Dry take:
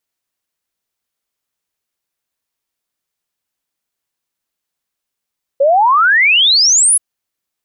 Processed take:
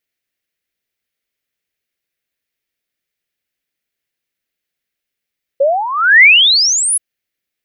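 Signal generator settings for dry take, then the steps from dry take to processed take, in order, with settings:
exponential sine sweep 530 Hz → 11,000 Hz 1.38 s −7 dBFS
octave-band graphic EQ 500/1,000/2,000/8,000 Hz +3/−12/+8/−5 dB

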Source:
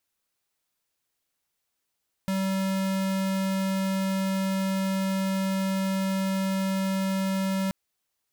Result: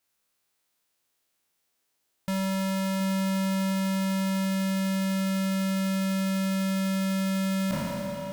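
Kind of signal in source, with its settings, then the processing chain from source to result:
tone square 192 Hz −26.5 dBFS 5.43 s
peak hold with a decay on every bin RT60 2.94 s
low-shelf EQ 110 Hz −5.5 dB
echo through a band-pass that steps 721 ms, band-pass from 330 Hz, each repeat 0.7 octaves, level −3 dB

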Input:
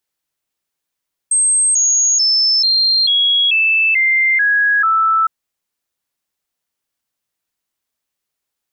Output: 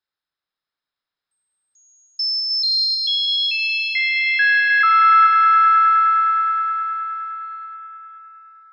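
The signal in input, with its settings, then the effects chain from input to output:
stepped sweep 8,370 Hz down, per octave 3, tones 9, 0.44 s, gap 0.00 s −10.5 dBFS
Chebyshev low-pass with heavy ripple 5,300 Hz, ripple 9 dB
echo that builds up and dies away 104 ms, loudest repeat 5, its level −9.5 dB

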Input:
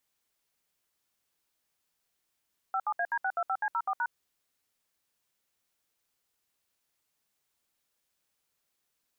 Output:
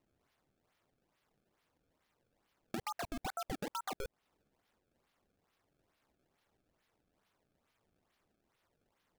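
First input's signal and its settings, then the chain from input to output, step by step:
touch tones "57AD625C04#", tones 59 ms, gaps 67 ms, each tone −29.5 dBFS
sample-and-hold swept by an LFO 26×, swing 160% 2.3 Hz
downward compressor 5 to 1, threshold −38 dBFS

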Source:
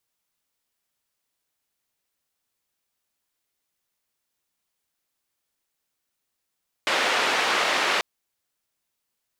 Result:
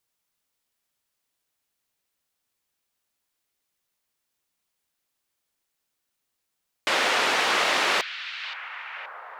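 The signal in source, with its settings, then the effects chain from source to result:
band-limited noise 420–2,600 Hz, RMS −23 dBFS 1.14 s
on a send: echo through a band-pass that steps 524 ms, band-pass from 3,200 Hz, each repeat −0.7 octaves, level −9 dB

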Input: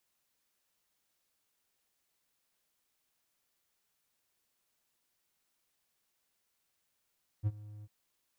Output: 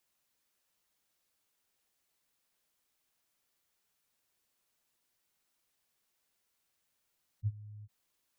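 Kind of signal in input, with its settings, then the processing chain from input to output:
note with an ADSR envelope triangle 105 Hz, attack 38 ms, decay 40 ms, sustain −20 dB, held 0.41 s, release 38 ms −23.5 dBFS
gate on every frequency bin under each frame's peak −15 dB strong

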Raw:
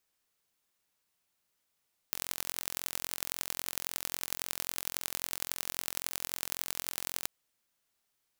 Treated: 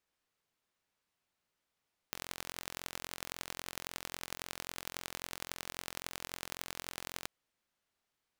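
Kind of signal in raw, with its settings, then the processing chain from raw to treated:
impulse train 43.7 per second, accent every 4, −4.5 dBFS 5.14 s
low-pass filter 3,100 Hz 6 dB per octave

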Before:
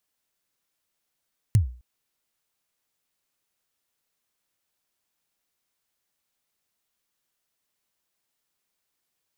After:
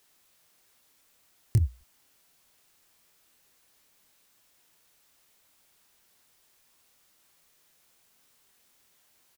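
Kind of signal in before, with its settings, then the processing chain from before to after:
synth kick length 0.26 s, from 120 Hz, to 61 Hz, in 119 ms, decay 0.39 s, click on, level −11 dB
background noise white −67 dBFS
soft clipping −12.5 dBFS
double-tracking delay 25 ms −7.5 dB

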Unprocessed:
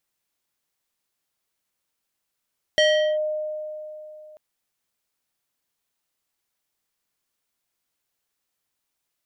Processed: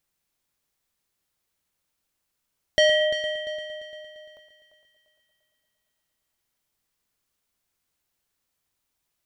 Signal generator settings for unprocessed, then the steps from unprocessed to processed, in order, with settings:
two-operator FM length 1.59 s, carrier 613 Hz, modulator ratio 4.12, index 1.1, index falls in 0.40 s linear, decay 3.17 s, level −13.5 dB
low-shelf EQ 150 Hz +8.5 dB
on a send: echo machine with several playback heads 115 ms, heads first and third, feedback 57%, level −12.5 dB

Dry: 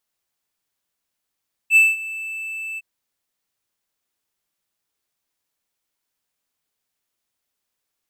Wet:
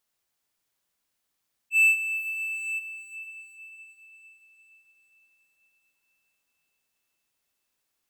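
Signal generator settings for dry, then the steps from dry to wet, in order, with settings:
note with an ADSR envelope triangle 2,640 Hz, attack 61 ms, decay 199 ms, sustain −19 dB, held 1.08 s, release 30 ms −6 dBFS
volume swells 204 ms
on a send: feedback delay with all-pass diffusion 451 ms, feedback 53%, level −9 dB

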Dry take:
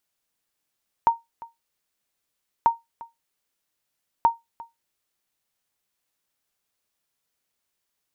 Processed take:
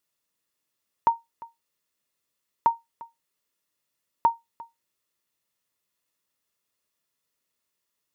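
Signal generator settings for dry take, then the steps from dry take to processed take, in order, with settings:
ping with an echo 925 Hz, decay 0.18 s, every 1.59 s, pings 3, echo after 0.35 s, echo −21.5 dB −9 dBFS
notch comb filter 770 Hz

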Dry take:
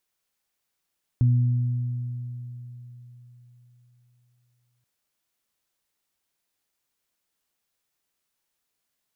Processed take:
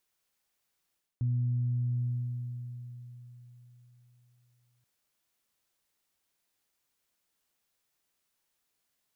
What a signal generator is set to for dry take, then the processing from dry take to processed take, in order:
harmonic partials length 3.63 s, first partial 122 Hz, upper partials −14 dB, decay 3.91 s, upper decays 2.68 s, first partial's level −15 dB
dynamic equaliser 110 Hz, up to +4 dB, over −32 dBFS, Q 1.3
reversed playback
downward compressor 6 to 1, threshold −29 dBFS
reversed playback

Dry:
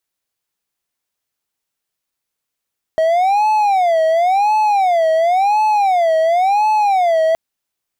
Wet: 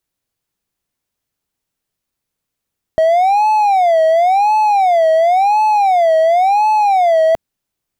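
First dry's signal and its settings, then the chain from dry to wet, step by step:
siren wail 639–862 Hz 0.94 per second triangle −9 dBFS 4.37 s
low-shelf EQ 360 Hz +11.5 dB

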